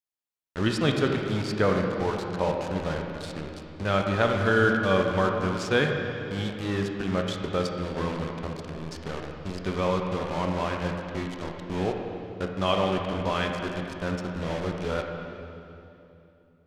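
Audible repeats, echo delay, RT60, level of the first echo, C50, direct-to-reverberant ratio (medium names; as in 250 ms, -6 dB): no echo, no echo, 2.9 s, no echo, 3.0 dB, 2.0 dB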